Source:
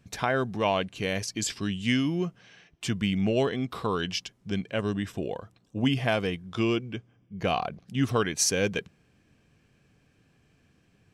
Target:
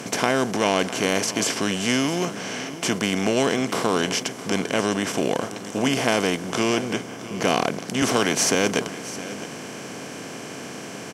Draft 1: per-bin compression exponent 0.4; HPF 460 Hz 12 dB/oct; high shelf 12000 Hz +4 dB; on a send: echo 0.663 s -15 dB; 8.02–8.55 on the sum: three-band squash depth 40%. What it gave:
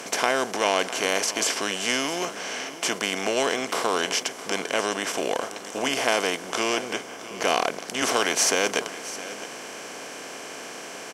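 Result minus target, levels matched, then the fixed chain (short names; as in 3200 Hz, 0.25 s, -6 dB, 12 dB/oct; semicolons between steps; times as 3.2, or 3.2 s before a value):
125 Hz band -12.5 dB
per-bin compression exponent 0.4; HPF 170 Hz 12 dB/oct; high shelf 12000 Hz +4 dB; on a send: echo 0.663 s -15 dB; 8.02–8.55 on the sum: three-band squash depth 40%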